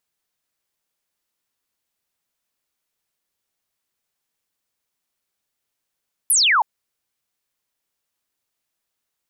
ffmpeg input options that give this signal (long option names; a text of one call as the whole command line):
ffmpeg -f lavfi -i "aevalsrc='0.224*clip(t/0.002,0,1)*clip((0.32-t)/0.002,0,1)*sin(2*PI*12000*0.32/log(800/12000)*(exp(log(800/12000)*t/0.32)-1))':duration=0.32:sample_rate=44100" out.wav